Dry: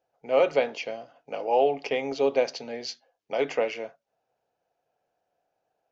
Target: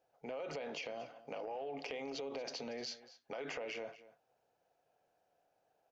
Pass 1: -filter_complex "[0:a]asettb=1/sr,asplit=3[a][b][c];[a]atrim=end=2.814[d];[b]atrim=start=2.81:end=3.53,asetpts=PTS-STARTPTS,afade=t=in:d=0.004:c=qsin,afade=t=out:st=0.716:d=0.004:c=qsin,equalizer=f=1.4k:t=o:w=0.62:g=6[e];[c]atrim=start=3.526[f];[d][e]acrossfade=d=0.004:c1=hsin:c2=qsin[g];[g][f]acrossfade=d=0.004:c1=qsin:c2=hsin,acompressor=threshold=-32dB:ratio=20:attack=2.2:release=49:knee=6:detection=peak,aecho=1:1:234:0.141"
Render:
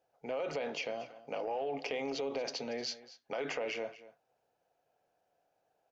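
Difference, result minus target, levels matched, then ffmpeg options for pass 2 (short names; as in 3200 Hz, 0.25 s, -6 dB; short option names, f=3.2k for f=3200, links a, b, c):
compressor: peak gain reduction -6.5 dB
-filter_complex "[0:a]asettb=1/sr,asplit=3[a][b][c];[a]atrim=end=2.814[d];[b]atrim=start=2.81:end=3.53,asetpts=PTS-STARTPTS,afade=t=in:d=0.004:c=qsin,afade=t=out:st=0.716:d=0.004:c=qsin,equalizer=f=1.4k:t=o:w=0.62:g=6[e];[c]atrim=start=3.526[f];[d][e]acrossfade=d=0.004:c1=hsin:c2=qsin[g];[g][f]acrossfade=d=0.004:c1=qsin:c2=hsin,acompressor=threshold=-39dB:ratio=20:attack=2.2:release=49:knee=6:detection=peak,aecho=1:1:234:0.141"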